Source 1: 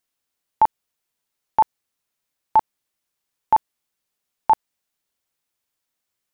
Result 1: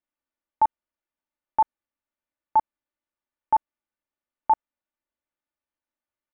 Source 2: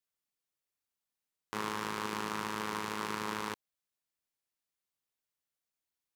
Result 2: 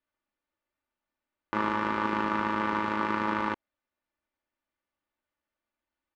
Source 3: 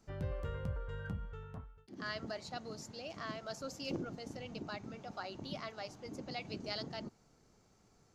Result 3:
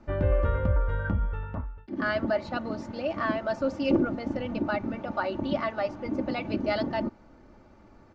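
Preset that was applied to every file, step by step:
low-pass filter 1,900 Hz 12 dB per octave
comb filter 3.4 ms, depth 61%
normalise the peak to −12 dBFS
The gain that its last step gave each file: −7.5, +8.5, +14.0 decibels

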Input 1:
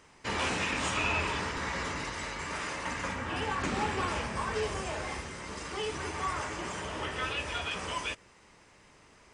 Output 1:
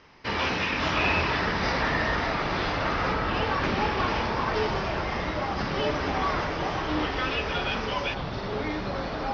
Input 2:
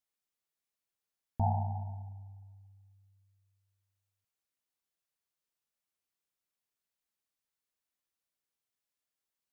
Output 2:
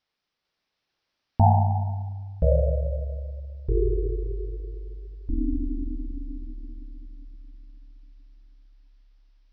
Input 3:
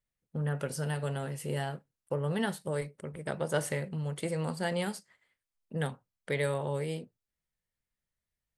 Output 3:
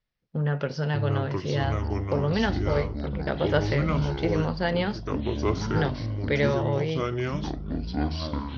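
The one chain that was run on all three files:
delay with pitch and tempo change per echo 447 ms, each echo −6 semitones, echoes 3
Butterworth low-pass 5,600 Hz 72 dB per octave
loudness normalisation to −27 LKFS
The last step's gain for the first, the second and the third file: +4.5, +12.5, +6.0 decibels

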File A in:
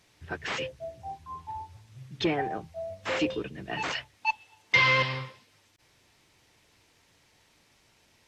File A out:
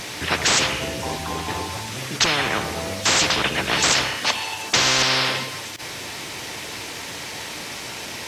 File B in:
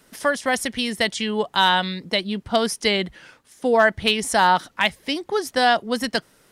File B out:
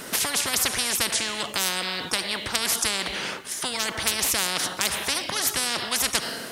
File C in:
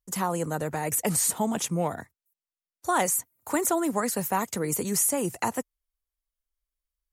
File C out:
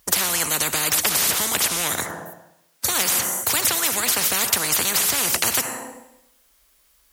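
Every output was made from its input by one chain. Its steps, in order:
high-pass filter 200 Hz 6 dB per octave
four-comb reverb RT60 0.81 s, combs from 26 ms, DRR 18.5 dB
every bin compressed towards the loudest bin 10 to 1
normalise the peak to −3 dBFS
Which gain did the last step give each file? +7.5, +2.0, +9.0 decibels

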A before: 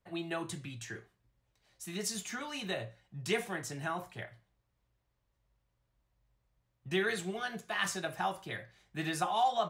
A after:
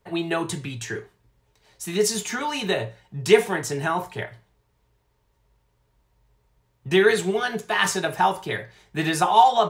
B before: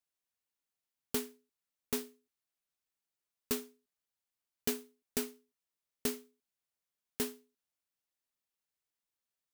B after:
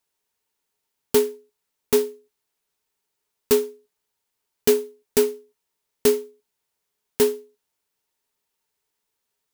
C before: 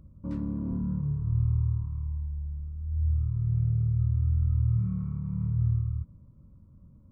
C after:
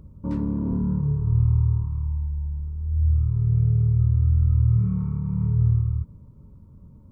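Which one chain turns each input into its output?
hollow resonant body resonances 420/910 Hz, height 12 dB, ringing for 95 ms
loudness normalisation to −23 LKFS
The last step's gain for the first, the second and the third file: +11.5, +11.0, +6.0 decibels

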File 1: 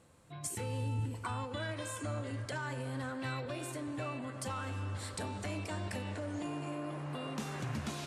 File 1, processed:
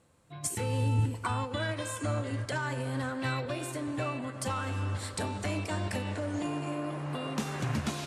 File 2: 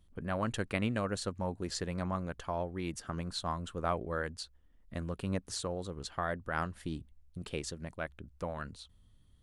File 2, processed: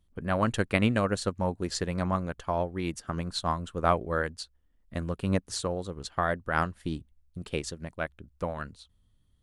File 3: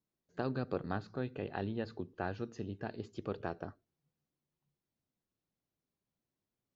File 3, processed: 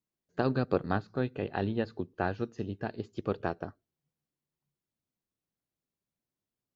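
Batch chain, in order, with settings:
expander for the loud parts 1.5 to 1, over −55 dBFS
level +9 dB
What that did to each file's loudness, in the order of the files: +6.0, +7.0, +7.0 LU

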